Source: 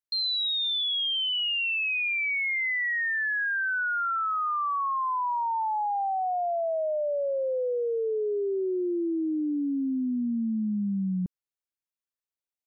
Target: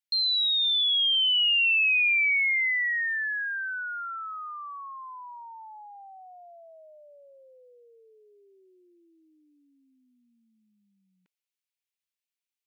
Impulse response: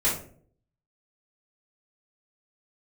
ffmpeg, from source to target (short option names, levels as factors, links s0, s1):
-af "highpass=f=2400:t=q:w=1.8"